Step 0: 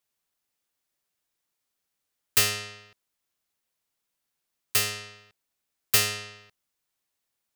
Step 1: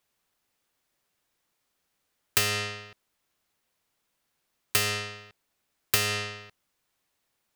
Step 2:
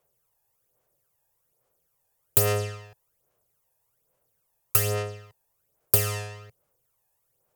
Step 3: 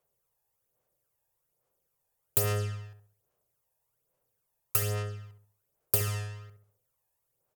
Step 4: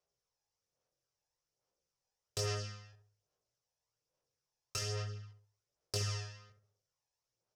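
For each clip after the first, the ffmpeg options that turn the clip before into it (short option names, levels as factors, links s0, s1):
-af "highshelf=f=3900:g=-6.5,acompressor=threshold=0.0355:ratio=12,volume=2.66"
-af "equalizer=f=125:t=o:w=1:g=8,equalizer=f=250:t=o:w=1:g=-10,equalizer=f=500:t=o:w=1:g=12,equalizer=f=2000:t=o:w=1:g=-5,equalizer=f=4000:t=o:w=1:g=-9,equalizer=f=16000:t=o:w=1:g=11,aphaser=in_gain=1:out_gain=1:delay=1.2:decay=0.58:speed=1.2:type=sinusoidal,volume=0.708"
-filter_complex "[0:a]asplit=2[s0][s1];[s1]adelay=68,lowpass=f=1000:p=1,volume=0.501,asplit=2[s2][s3];[s3]adelay=68,lowpass=f=1000:p=1,volume=0.45,asplit=2[s4][s5];[s5]adelay=68,lowpass=f=1000:p=1,volume=0.45,asplit=2[s6][s7];[s7]adelay=68,lowpass=f=1000:p=1,volume=0.45,asplit=2[s8][s9];[s9]adelay=68,lowpass=f=1000:p=1,volume=0.45[s10];[s0][s2][s4][s6][s8][s10]amix=inputs=6:normalize=0,volume=0.501"
-af "flanger=delay=17:depth=6.2:speed=0.54,lowpass=f=5500:t=q:w=4.2,volume=0.596"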